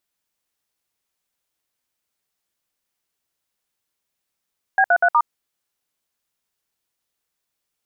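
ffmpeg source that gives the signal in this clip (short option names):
-f lavfi -i "aevalsrc='0.188*clip(min(mod(t,0.122),0.062-mod(t,0.122))/0.002,0,1)*(eq(floor(t/0.122),0)*(sin(2*PI*770*mod(t,0.122))+sin(2*PI*1633*mod(t,0.122)))+eq(floor(t/0.122),1)*(sin(2*PI*697*mod(t,0.122))+sin(2*PI*1477*mod(t,0.122)))+eq(floor(t/0.122),2)*(sin(2*PI*697*mod(t,0.122))+sin(2*PI*1477*mod(t,0.122)))+eq(floor(t/0.122),3)*(sin(2*PI*941*mod(t,0.122))+sin(2*PI*1209*mod(t,0.122))))':d=0.488:s=44100"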